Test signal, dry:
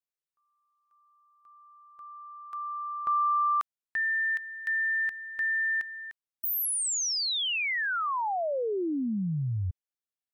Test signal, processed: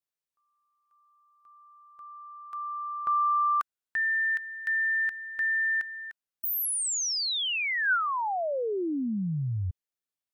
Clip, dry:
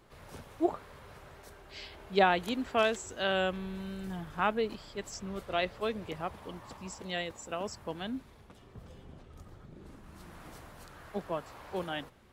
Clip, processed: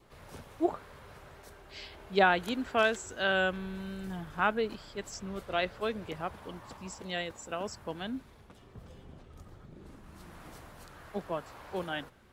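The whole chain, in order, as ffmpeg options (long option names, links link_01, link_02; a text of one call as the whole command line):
ffmpeg -i in.wav -af "adynamicequalizer=threshold=0.00316:dfrequency=1500:dqfactor=6.4:tfrequency=1500:tqfactor=6.4:attack=5:release=100:ratio=0.375:range=3.5:mode=boostabove:tftype=bell" out.wav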